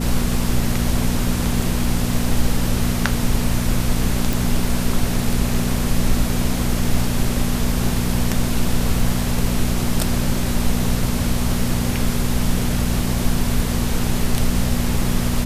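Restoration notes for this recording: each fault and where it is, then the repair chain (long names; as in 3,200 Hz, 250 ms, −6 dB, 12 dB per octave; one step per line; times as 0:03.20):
mains hum 60 Hz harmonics 4 −23 dBFS
0:04.33: click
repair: click removal
hum removal 60 Hz, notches 4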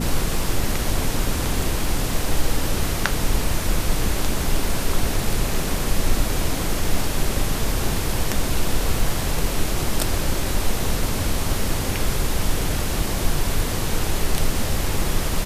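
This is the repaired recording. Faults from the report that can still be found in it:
none of them is left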